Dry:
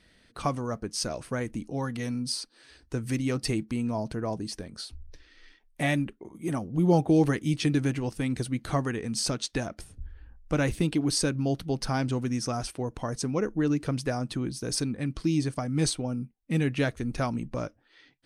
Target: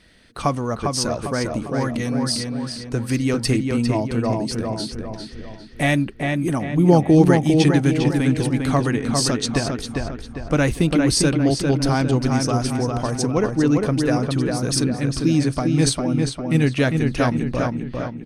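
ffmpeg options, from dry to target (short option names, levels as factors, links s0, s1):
-filter_complex "[0:a]asplit=2[s0][s1];[s1]adelay=401,lowpass=f=3300:p=1,volume=0.668,asplit=2[s2][s3];[s3]adelay=401,lowpass=f=3300:p=1,volume=0.47,asplit=2[s4][s5];[s5]adelay=401,lowpass=f=3300:p=1,volume=0.47,asplit=2[s6][s7];[s7]adelay=401,lowpass=f=3300:p=1,volume=0.47,asplit=2[s8][s9];[s9]adelay=401,lowpass=f=3300:p=1,volume=0.47,asplit=2[s10][s11];[s11]adelay=401,lowpass=f=3300:p=1,volume=0.47[s12];[s0][s2][s4][s6][s8][s10][s12]amix=inputs=7:normalize=0,volume=2.37"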